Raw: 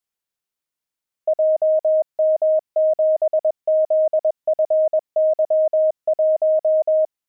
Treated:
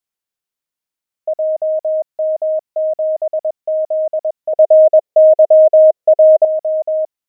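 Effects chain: 4.53–6.45 band shelf 520 Hz +10 dB 1 oct

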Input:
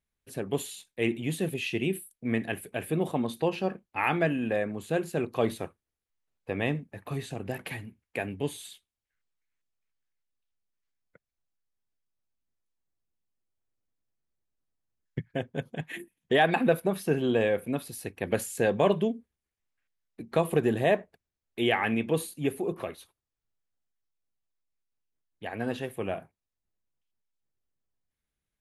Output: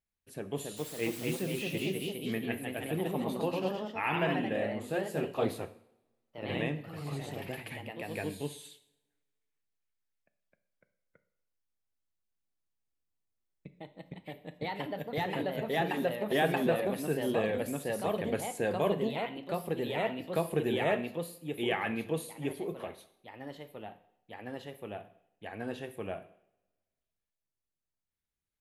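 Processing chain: 0.76–1.41 added noise white -43 dBFS; echoes that change speed 0.298 s, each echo +1 st, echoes 3; two-slope reverb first 0.63 s, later 1.7 s, from -23 dB, DRR 10.5 dB; gain -6.5 dB

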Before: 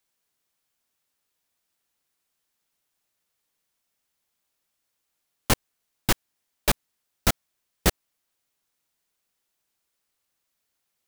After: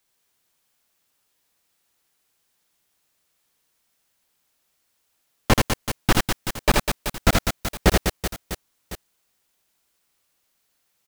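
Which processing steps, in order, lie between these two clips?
reverse bouncing-ball echo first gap 80 ms, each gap 1.5×, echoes 5; slew limiter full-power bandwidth 240 Hz; gain +5.5 dB

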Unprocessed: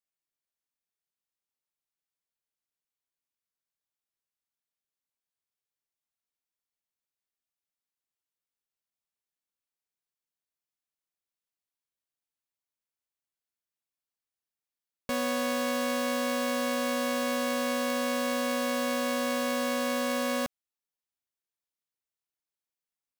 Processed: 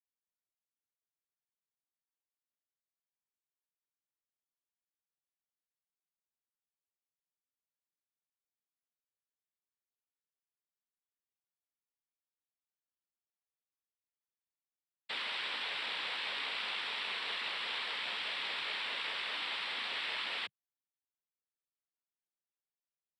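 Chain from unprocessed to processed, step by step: inverted band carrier 2800 Hz; noise vocoder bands 6; gain -8.5 dB

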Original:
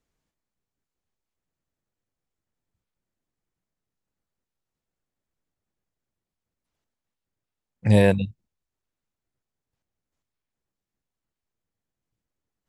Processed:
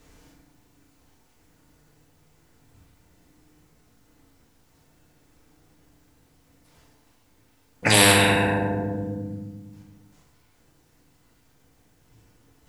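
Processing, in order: FDN reverb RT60 1.3 s, low-frequency decay 1.4×, high-frequency decay 0.55×, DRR -3.5 dB; spectral compressor 4:1; gain -2 dB

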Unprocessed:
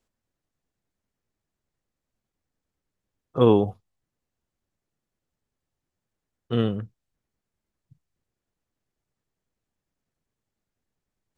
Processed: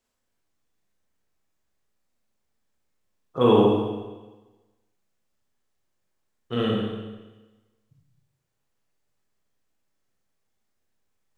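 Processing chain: low shelf 390 Hz -7 dB; Schroeder reverb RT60 1.2 s, combs from 29 ms, DRR -4 dB

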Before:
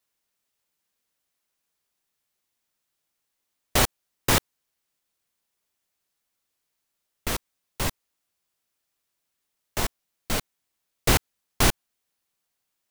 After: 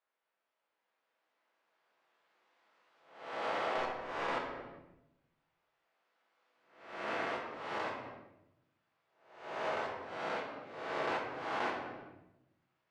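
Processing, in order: spectral swells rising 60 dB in 0.69 s; recorder AGC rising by 6.4 dB/s; HPF 640 Hz 12 dB/oct; high shelf 3300 Hz -11.5 dB; 3.77–4.37 tube stage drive 13 dB, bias 0.3; tape spacing loss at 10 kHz 32 dB; reverb RT60 0.85 s, pre-delay 6 ms, DRR -0.5 dB; compressor 2:1, threshold -42 dBFS, peak gain reduction 11 dB; gain +1.5 dB

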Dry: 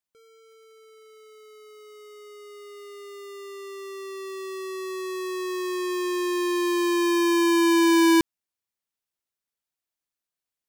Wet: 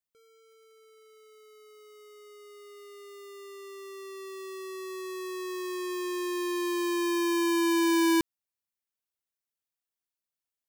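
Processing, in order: high shelf 10000 Hz +5 dB; gain -6 dB

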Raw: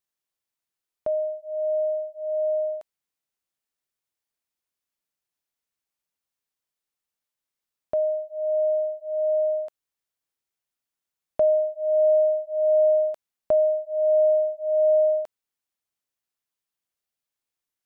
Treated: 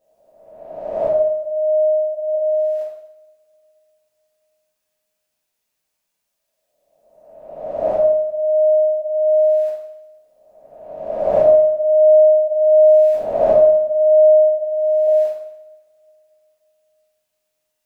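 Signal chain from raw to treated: spectral swells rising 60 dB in 1.30 s; 2.34–2.78 notch comb 290 Hz; 14.47–15.07 dynamic EQ 610 Hz, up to -6 dB, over -31 dBFS; two-slope reverb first 0.76 s, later 3.3 s, from -26 dB, DRR -9 dB; gain -1 dB

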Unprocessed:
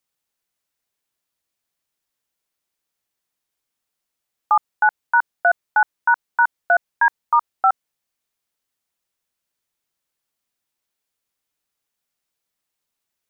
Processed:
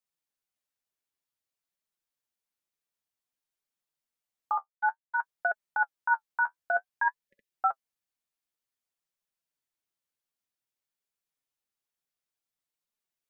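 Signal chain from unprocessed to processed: 4.52–5.18 expander -13 dBFS; flange 0.54 Hz, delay 4.5 ms, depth 8.2 ms, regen +37%; 7.27–7.52 spectral delete 560–1700 Hz; gain -6.5 dB

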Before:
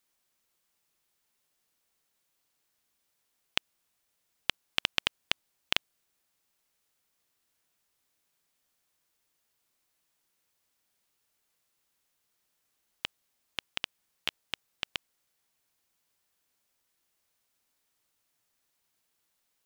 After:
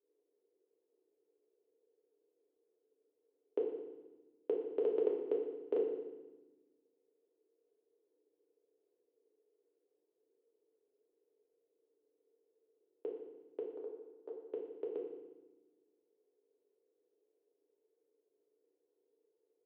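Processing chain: 13.65–14.42 wrapped overs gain 22.5 dB; Butterworth band-pass 420 Hz, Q 4.2; FDN reverb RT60 1.1 s, low-frequency decay 1.6×, high-frequency decay 0.95×, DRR -2 dB; gain +16.5 dB

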